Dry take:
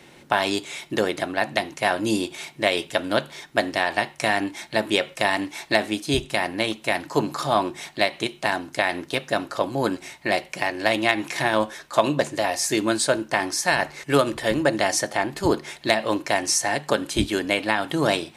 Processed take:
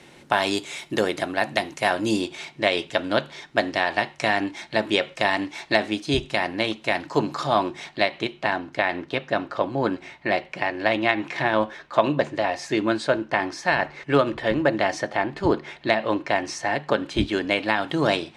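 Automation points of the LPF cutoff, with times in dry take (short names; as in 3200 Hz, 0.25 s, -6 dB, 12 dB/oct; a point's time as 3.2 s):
1.81 s 11000 Hz
2.44 s 5600 Hz
7.63 s 5600 Hz
8.54 s 3100 Hz
16.9 s 3100 Hz
17.65 s 5200 Hz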